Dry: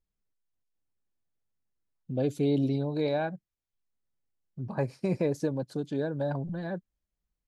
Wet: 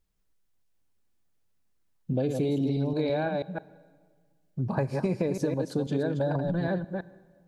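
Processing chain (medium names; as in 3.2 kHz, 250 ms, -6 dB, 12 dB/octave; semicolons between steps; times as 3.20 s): chunks repeated in reverse 163 ms, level -6.5 dB; compression, threshold -32 dBFS, peak gain reduction 10 dB; reverberation RT60 1.7 s, pre-delay 26 ms, DRR 18 dB; trim +8 dB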